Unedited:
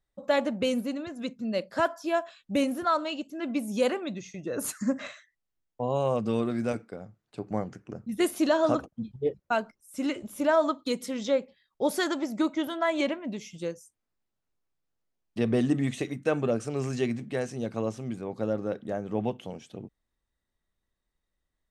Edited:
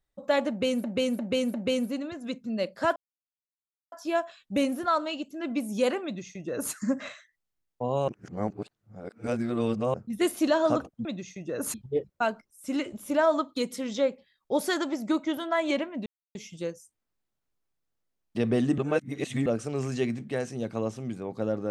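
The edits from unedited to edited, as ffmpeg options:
ffmpeg -i in.wav -filter_complex "[0:a]asplit=12[link_01][link_02][link_03][link_04][link_05][link_06][link_07][link_08][link_09][link_10][link_11][link_12];[link_01]atrim=end=0.842[link_13];[link_02]atrim=start=0.488:end=0.842[link_14];[link_03]atrim=start=0.488:end=0.842[link_15];[link_04]atrim=start=0.488:end=1.91,asetpts=PTS-STARTPTS,afade=type=out:start_time=1.418:duration=0.004:curve=hsin,apad=pad_dur=0.96[link_16];[link_05]atrim=start=1.91:end=6.072,asetpts=PTS-STARTPTS,afade=type=in:duration=0.004:curve=hsin[link_17];[link_06]atrim=start=6.068:end=7.932,asetpts=PTS-STARTPTS,areverse[link_18];[link_07]atrim=start=7.928:end=9.042[link_19];[link_08]atrim=start=4.028:end=4.722[link_20];[link_09]atrim=start=9.038:end=13.36,asetpts=PTS-STARTPTS,afade=type=out:start_time=4.318:duration=0.004:curve=hsin,apad=pad_dur=0.29[link_21];[link_10]atrim=start=13.36:end=15.792,asetpts=PTS-STARTPTS,afade=type=in:duration=0.004:curve=hsin[link_22];[link_11]atrim=start=15.788:end=16.472,asetpts=PTS-STARTPTS,areverse[link_23];[link_12]atrim=start=16.468[link_24];[link_13][link_14]acrossfade=duration=0.004:curve1=hsin:curve2=hsin[link_25];[link_25][link_15]acrossfade=duration=0.004:curve1=hsin:curve2=hsin[link_26];[link_16][link_17]concat=n=2:v=0:a=1[link_27];[link_26][link_27]acrossfade=duration=0.004:curve1=hsin:curve2=hsin[link_28];[link_28][link_18]acrossfade=duration=0.004:curve1=hsin:curve2=hsin[link_29];[link_29][link_19]acrossfade=duration=0.004:curve1=hsin:curve2=hsin[link_30];[link_30][link_20]acrossfade=duration=0.004:curve1=hsin:curve2=hsin[link_31];[link_21][link_22]concat=n=2:v=0:a=1[link_32];[link_31][link_32]acrossfade=duration=0.004:curve1=hsin:curve2=hsin[link_33];[link_33][link_23]acrossfade=duration=0.004:curve1=hsin:curve2=hsin[link_34];[link_34][link_24]acrossfade=duration=0.004:curve1=hsin:curve2=hsin" out.wav

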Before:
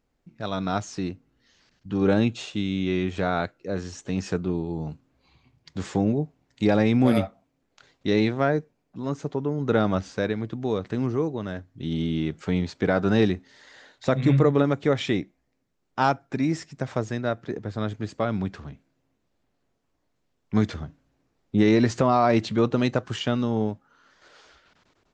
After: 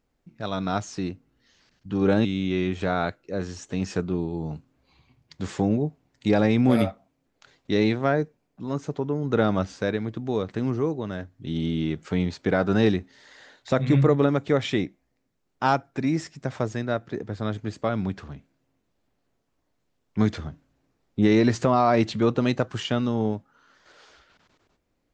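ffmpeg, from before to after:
ffmpeg -i in.wav -filter_complex "[0:a]asplit=2[link_01][link_02];[link_01]atrim=end=2.252[link_03];[link_02]atrim=start=2.608[link_04];[link_03][link_04]acrossfade=duration=0.004:curve1=hsin:curve2=hsin" out.wav

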